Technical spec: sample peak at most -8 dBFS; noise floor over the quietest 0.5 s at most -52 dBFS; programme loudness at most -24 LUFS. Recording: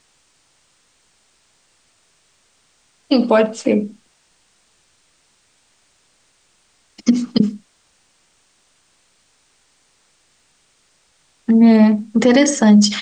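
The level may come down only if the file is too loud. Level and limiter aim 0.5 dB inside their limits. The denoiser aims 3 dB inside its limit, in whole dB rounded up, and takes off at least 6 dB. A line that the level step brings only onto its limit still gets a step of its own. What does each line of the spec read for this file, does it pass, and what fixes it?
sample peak -3.0 dBFS: fail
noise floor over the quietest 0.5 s -60 dBFS: pass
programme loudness -15.0 LUFS: fail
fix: trim -9.5 dB

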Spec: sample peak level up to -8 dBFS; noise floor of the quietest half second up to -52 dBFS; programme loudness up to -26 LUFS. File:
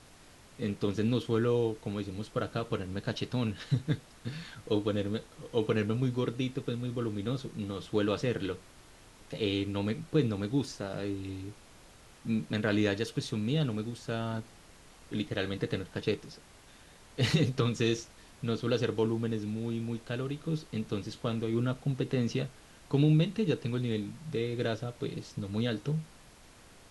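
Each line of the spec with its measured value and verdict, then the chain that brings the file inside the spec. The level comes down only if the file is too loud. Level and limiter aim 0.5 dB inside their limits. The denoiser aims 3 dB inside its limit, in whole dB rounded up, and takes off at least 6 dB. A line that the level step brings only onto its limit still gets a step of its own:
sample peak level -14.0 dBFS: pass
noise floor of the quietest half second -55 dBFS: pass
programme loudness -32.5 LUFS: pass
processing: none needed

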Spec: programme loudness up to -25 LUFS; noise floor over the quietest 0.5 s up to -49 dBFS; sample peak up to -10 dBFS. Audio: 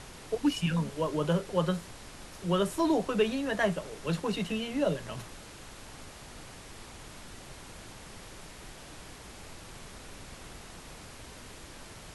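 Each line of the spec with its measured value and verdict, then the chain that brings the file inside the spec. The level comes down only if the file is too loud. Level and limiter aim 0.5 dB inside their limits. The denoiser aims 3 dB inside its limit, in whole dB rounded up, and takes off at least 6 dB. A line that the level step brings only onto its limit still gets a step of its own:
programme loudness -30.5 LUFS: pass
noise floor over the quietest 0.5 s -47 dBFS: fail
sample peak -14.5 dBFS: pass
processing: noise reduction 6 dB, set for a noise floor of -47 dBFS

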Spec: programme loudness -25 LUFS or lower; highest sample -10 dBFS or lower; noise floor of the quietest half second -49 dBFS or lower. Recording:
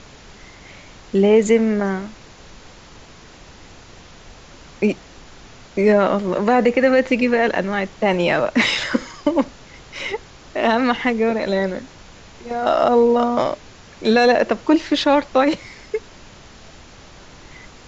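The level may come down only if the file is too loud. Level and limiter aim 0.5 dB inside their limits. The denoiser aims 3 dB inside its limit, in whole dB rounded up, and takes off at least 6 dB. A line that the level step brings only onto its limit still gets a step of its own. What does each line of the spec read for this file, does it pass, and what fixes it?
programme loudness -18.5 LUFS: fail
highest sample -4.5 dBFS: fail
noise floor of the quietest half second -43 dBFS: fail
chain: trim -7 dB

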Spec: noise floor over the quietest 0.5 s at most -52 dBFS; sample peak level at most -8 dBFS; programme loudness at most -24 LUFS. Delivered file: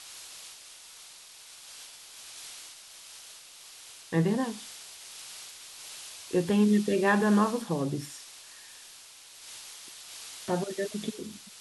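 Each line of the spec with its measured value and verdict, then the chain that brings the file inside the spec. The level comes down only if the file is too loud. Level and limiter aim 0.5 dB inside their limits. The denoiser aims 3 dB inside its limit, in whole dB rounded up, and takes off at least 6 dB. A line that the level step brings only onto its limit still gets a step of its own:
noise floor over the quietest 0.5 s -51 dBFS: fail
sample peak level -12.0 dBFS: pass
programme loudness -29.0 LUFS: pass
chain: noise reduction 6 dB, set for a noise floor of -51 dBFS

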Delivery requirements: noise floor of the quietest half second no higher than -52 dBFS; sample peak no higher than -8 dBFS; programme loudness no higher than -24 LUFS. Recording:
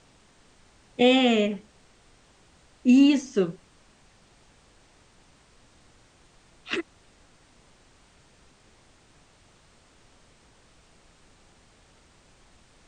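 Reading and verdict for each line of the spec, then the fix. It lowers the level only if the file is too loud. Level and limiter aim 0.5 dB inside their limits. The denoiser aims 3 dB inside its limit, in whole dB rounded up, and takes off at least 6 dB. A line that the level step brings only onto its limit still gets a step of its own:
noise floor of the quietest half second -58 dBFS: pass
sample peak -8.5 dBFS: pass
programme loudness -22.5 LUFS: fail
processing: trim -2 dB

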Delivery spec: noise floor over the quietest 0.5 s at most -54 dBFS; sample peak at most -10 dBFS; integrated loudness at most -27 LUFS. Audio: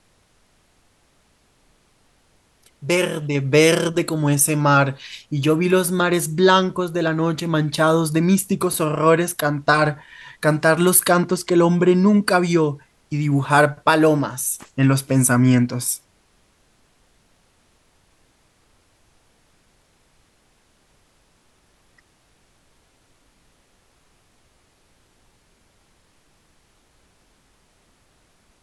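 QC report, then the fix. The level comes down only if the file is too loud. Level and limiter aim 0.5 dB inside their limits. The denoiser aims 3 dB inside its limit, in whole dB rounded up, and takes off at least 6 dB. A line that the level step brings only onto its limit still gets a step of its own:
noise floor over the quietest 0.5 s -60 dBFS: pass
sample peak -2.5 dBFS: fail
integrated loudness -18.0 LUFS: fail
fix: trim -9.5 dB

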